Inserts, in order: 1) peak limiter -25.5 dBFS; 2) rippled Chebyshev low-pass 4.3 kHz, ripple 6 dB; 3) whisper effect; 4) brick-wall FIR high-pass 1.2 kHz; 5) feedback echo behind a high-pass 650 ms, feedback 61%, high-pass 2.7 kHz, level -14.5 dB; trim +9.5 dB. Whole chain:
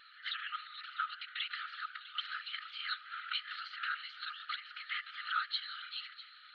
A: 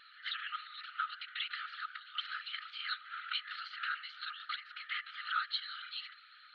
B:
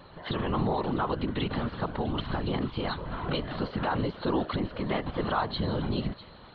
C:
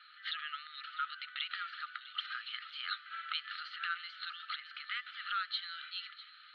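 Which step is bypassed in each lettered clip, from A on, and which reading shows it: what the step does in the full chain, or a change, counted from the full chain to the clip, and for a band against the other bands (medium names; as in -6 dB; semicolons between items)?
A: 5, echo-to-direct -20.0 dB to none; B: 4, crest factor change -3.5 dB; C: 3, momentary loudness spread change -1 LU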